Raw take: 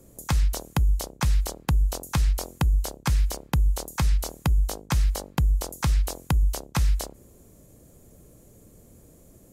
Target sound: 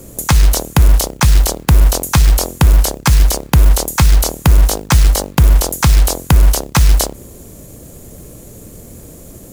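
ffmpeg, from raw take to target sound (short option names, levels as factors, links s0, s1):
-af "highshelf=f=4200:g=2.5,acrusher=bits=4:mode=log:mix=0:aa=0.000001,alimiter=level_in=7.5:limit=0.891:release=50:level=0:latency=1,volume=0.891"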